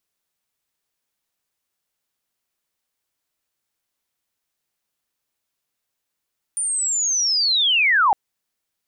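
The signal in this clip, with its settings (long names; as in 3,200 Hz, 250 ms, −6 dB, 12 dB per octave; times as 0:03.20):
glide linear 9,300 Hz → 750 Hz −20.5 dBFS → −12.5 dBFS 1.56 s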